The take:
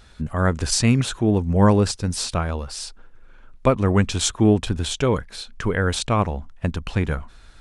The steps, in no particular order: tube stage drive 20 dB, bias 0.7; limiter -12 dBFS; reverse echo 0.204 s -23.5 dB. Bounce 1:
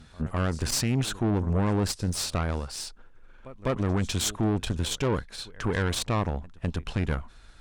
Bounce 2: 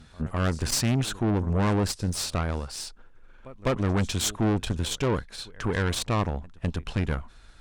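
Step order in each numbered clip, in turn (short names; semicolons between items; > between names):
reverse echo > limiter > tube stage; reverse echo > tube stage > limiter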